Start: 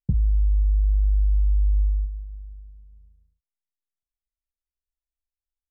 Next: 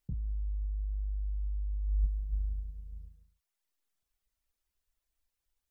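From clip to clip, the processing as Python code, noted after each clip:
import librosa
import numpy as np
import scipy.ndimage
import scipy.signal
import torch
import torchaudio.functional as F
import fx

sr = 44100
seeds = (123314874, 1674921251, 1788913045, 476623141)

y = fx.dereverb_blind(x, sr, rt60_s=0.69)
y = fx.over_compress(y, sr, threshold_db=-32.0, ratio=-1.0)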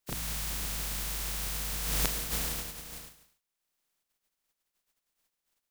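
y = fx.spec_flatten(x, sr, power=0.27)
y = fx.peak_eq(y, sr, hz=73.0, db=-6.5, octaves=0.64)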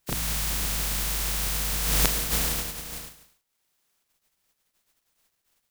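y = fx.quant_companded(x, sr, bits=8)
y = y * 10.0 ** (7.0 / 20.0)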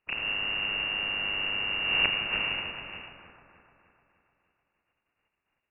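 y = fx.freq_invert(x, sr, carrier_hz=2800)
y = fx.echo_split(y, sr, split_hz=1800.0, low_ms=302, high_ms=86, feedback_pct=52, wet_db=-8.0)
y = y * 10.0 ** (-2.5 / 20.0)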